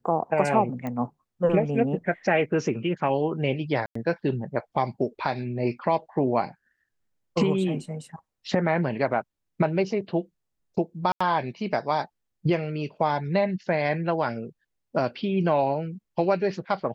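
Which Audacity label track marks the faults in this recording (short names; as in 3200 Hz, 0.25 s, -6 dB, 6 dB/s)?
0.870000	0.870000	pop -20 dBFS
3.860000	3.950000	gap 94 ms
11.120000	11.210000	gap 85 ms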